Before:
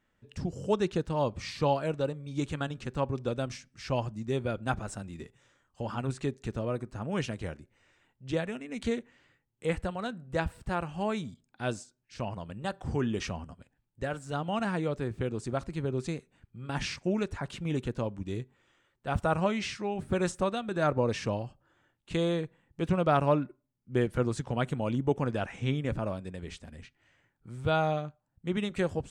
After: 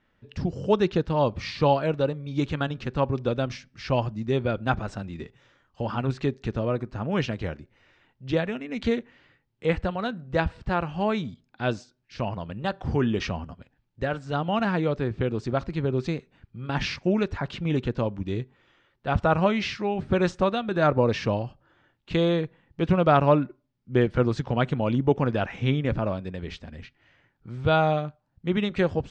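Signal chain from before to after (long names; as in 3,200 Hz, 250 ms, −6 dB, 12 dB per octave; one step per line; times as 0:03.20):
low-pass filter 5,100 Hz 24 dB per octave
level +6 dB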